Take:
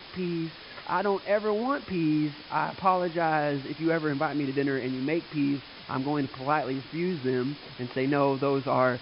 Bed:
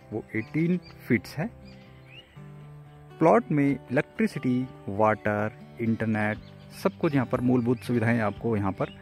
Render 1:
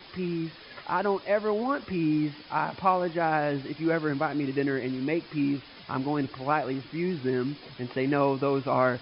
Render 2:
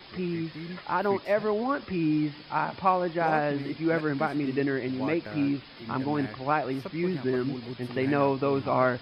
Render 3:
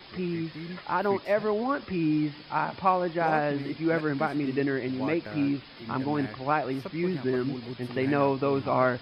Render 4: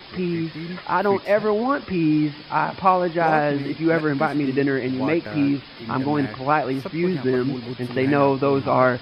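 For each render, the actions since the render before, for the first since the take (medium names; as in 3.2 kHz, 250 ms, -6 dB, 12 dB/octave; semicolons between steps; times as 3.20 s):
noise reduction 6 dB, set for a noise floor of -46 dBFS
add bed -14 dB
no audible change
trim +6.5 dB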